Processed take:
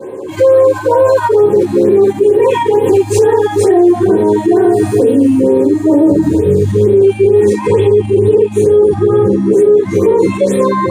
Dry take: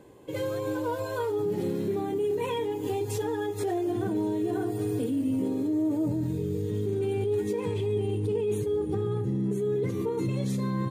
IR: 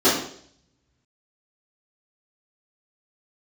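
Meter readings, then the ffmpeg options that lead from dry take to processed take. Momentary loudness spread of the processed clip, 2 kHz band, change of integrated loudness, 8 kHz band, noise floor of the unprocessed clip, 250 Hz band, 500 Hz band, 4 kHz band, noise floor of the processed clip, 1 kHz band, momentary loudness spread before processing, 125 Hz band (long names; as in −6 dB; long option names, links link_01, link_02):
2 LU, +16.5 dB, +19.0 dB, +16.5 dB, −34 dBFS, +17.0 dB, +21.0 dB, can't be measured, −23 dBFS, +19.5 dB, 3 LU, +12.5 dB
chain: -filter_complex "[1:a]atrim=start_sample=2205,afade=type=out:start_time=0.17:duration=0.01,atrim=end_sample=7938,asetrate=61740,aresample=44100[link_01];[0:a][link_01]afir=irnorm=-1:irlink=0,alimiter=level_in=5.5dB:limit=-1dB:release=50:level=0:latency=1,afftfilt=real='re*(1-between(b*sr/1024,420*pow(6000/420,0.5+0.5*sin(2*PI*2.2*pts/sr))/1.41,420*pow(6000/420,0.5+0.5*sin(2*PI*2.2*pts/sr))*1.41))':imag='im*(1-between(b*sr/1024,420*pow(6000/420,0.5+0.5*sin(2*PI*2.2*pts/sr))/1.41,420*pow(6000/420,0.5+0.5*sin(2*PI*2.2*pts/sr))*1.41))':win_size=1024:overlap=0.75,volume=-1dB"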